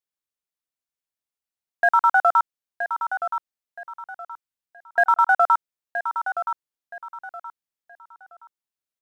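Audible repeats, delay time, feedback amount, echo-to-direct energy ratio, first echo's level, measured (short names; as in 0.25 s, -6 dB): 3, 0.972 s, 29%, -8.5 dB, -9.0 dB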